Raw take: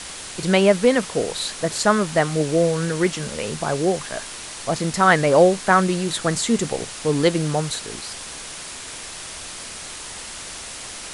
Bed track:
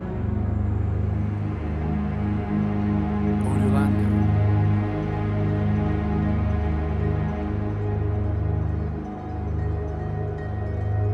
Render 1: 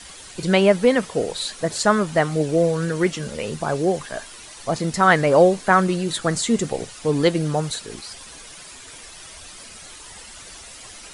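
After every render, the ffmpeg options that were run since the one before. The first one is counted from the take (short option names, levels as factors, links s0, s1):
-af "afftdn=nr=10:nf=-35"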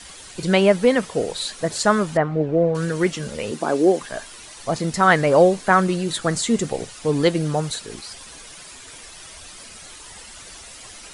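-filter_complex "[0:a]asettb=1/sr,asplit=3[s0][s1][s2];[s0]atrim=end=2.174[s3];[s1]atrim=start=2.17:end=2.75,asetpts=PTS-STARTPTS,afade=t=in:d=0.004:c=qsin,afade=t=out:st=0.576:d=0.004:c=qsin,lowpass=1600[s4];[s2]atrim=start=2.746[s5];[s3][s4]acrossfade=d=0.004:c1=hsin:c2=qsin[s6];[s6][s5]acrossfade=d=0.004:c1=qsin:c2=hsin,asettb=1/sr,asplit=3[s7][s8][s9];[s7]atrim=end=3.514[s10];[s8]atrim=start=3.51:end=4.02,asetpts=PTS-STARTPTS,afade=t=in:d=0.004:c=qsin,afade=t=out:st=0.506:d=0.004:c=qsin,highpass=f=280:t=q:w=2.3[s11];[s9]atrim=start=4.016[s12];[s10][s11]acrossfade=d=0.004:c1=hsin:c2=qsin[s13];[s13][s12]acrossfade=d=0.004:c1=qsin:c2=hsin"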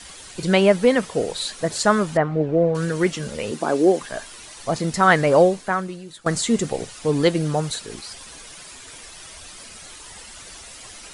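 -filter_complex "[0:a]asplit=2[s0][s1];[s0]atrim=end=6.26,asetpts=PTS-STARTPTS,afade=t=out:st=5.37:d=0.89:c=qua:silence=0.149624[s2];[s1]atrim=start=6.26,asetpts=PTS-STARTPTS,afade=t=in:d=0.004:c=hsin:silence=0.149624[s3];[s2][s3]concat=n=2:v=0:a=1"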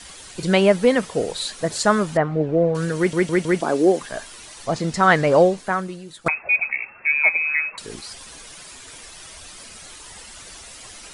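-filter_complex "[0:a]asettb=1/sr,asplit=3[s0][s1][s2];[s0]atrim=end=4.664[s3];[s1]atrim=start=4.66:end=5.58,asetpts=PTS-STARTPTS,afade=t=in:d=0.004:c=qsin,afade=t=out:st=0.916:d=0.004:c=qsin,lowpass=8000[s4];[s2]atrim=start=5.576[s5];[s3][s4]acrossfade=d=0.004:c1=hsin:c2=qsin[s6];[s6][s5]acrossfade=d=0.004:c1=qsin:c2=hsin,asettb=1/sr,asplit=3[s7][s8][s9];[s7]atrim=end=6.284[s10];[s8]atrim=start=6.28:end=7.78,asetpts=PTS-STARTPTS,afade=t=in:d=0.004:c=qsin,afade=t=out:st=1.496:d=0.004:c=qsin,lowpass=f=2300:t=q:w=0.5098,lowpass=f=2300:t=q:w=0.6013,lowpass=f=2300:t=q:w=0.9,lowpass=f=2300:t=q:w=2.563,afreqshift=-2700[s11];[s9]atrim=start=7.776[s12];[s10][s11]acrossfade=d=0.004:c1=hsin:c2=qsin[s13];[s13][s12]acrossfade=d=0.004:c1=qsin:c2=hsin,asplit=5[s14][s15][s16][s17][s18];[s14]atrim=end=3.132[s19];[s15]atrim=start=2.968:end=3.132[s20];[s16]atrim=start=2.968:end=3.132[s21];[s17]atrim=start=2.968:end=3.132[s22];[s18]atrim=start=3.608[s23];[s19][s20]acrossfade=d=0.004:c1=hsin:c2=hsin[s24];[s24][s21]acrossfade=d=0.004:c1=hsin:c2=hsin[s25];[s25][s22]acrossfade=d=0.004:c1=hsin:c2=hsin[s26];[s26][s23]acrossfade=d=0.004:c1=hsin:c2=hsin"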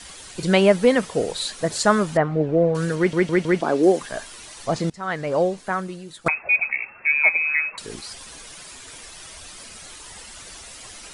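-filter_complex "[0:a]asettb=1/sr,asplit=3[s0][s1][s2];[s0]atrim=end=2.954[s3];[s1]atrim=start=2.95:end=3.83,asetpts=PTS-STARTPTS,afade=t=in:d=0.004:c=qsin,afade=t=out:st=0.876:d=0.004:c=qsin,acrossover=split=5300[s4][s5];[s5]acompressor=threshold=0.00282:ratio=4:attack=1:release=60[s6];[s4][s6]amix=inputs=2:normalize=0[s7];[s2]atrim=start=3.826[s8];[s3][s7]acrossfade=d=0.004:c1=hsin:c2=qsin[s9];[s9][s8]acrossfade=d=0.004:c1=qsin:c2=hsin,asplit=2[s10][s11];[s10]atrim=end=4.9,asetpts=PTS-STARTPTS,afade=t=out:st=4.896:d=0.004:c=hsin:silence=0.0891251[s12];[s11]atrim=start=4.9,asetpts=PTS-STARTPTS,afade=t=in:d=1.12:silence=0.0891251[s13];[s12][s13]concat=n=2:v=0:a=1"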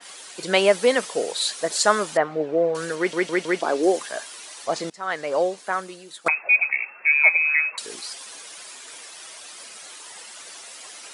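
-af "highpass=400,adynamicequalizer=threshold=0.0282:dfrequency=2900:dqfactor=0.7:tfrequency=2900:tqfactor=0.7:attack=5:release=100:ratio=0.375:range=2.5:mode=boostabove:tftype=highshelf"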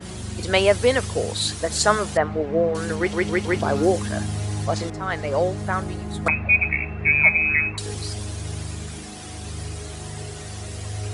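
-filter_complex "[1:a]volume=0.447[s0];[0:a][s0]amix=inputs=2:normalize=0"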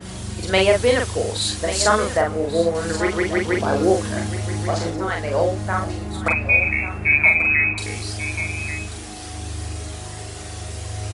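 -filter_complex "[0:a]asplit=2[s0][s1];[s1]adelay=42,volume=0.708[s2];[s0][s2]amix=inputs=2:normalize=0,aecho=1:1:1138:0.237"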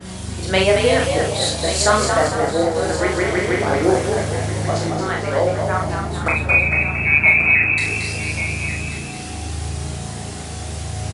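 -filter_complex "[0:a]asplit=2[s0][s1];[s1]adelay=27,volume=0.562[s2];[s0][s2]amix=inputs=2:normalize=0,asplit=2[s3][s4];[s4]asplit=6[s5][s6][s7][s8][s9][s10];[s5]adelay=226,afreqshift=57,volume=0.531[s11];[s6]adelay=452,afreqshift=114,volume=0.254[s12];[s7]adelay=678,afreqshift=171,volume=0.122[s13];[s8]adelay=904,afreqshift=228,volume=0.0589[s14];[s9]adelay=1130,afreqshift=285,volume=0.0282[s15];[s10]adelay=1356,afreqshift=342,volume=0.0135[s16];[s11][s12][s13][s14][s15][s16]amix=inputs=6:normalize=0[s17];[s3][s17]amix=inputs=2:normalize=0"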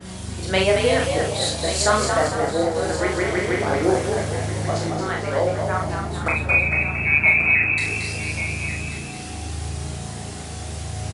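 -af "volume=0.708"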